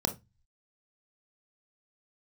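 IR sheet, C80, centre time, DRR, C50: 25.5 dB, 9 ms, 6.0 dB, 15.0 dB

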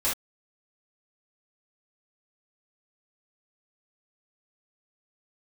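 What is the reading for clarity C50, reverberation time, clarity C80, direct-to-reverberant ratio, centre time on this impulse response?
5.0 dB, no single decay rate, 19.5 dB, -9.0 dB, 31 ms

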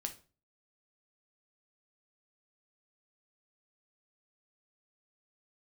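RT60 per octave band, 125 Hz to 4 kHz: 0.50 s, 0.45 s, 0.40 s, 0.35 s, 0.30 s, 0.30 s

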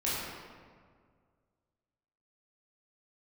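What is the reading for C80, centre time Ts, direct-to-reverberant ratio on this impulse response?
0.0 dB, 119 ms, -8.5 dB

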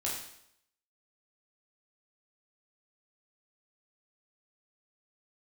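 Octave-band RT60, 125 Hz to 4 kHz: 0.70 s, 0.70 s, 0.75 s, 0.70 s, 0.70 s, 0.70 s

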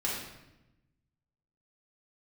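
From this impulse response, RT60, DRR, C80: 0.95 s, -6.0 dB, 4.0 dB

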